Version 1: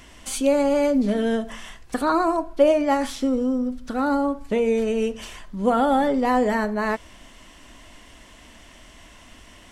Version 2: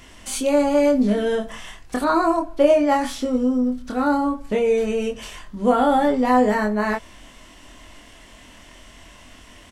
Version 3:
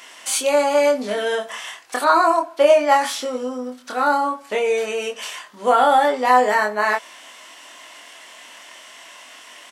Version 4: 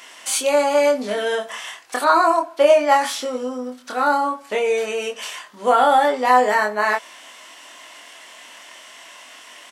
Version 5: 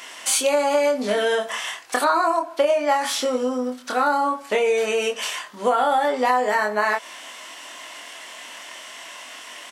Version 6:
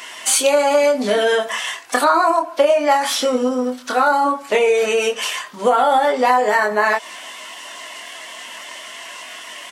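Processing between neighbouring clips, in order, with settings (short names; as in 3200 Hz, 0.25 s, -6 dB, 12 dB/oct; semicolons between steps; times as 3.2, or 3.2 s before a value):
doubler 24 ms -3 dB
HPF 680 Hz 12 dB/oct; gain +6.5 dB
nothing audible
compressor 6:1, threshold -20 dBFS, peak gain reduction 11 dB; gain +3.5 dB
bin magnitudes rounded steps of 15 dB; gain +5 dB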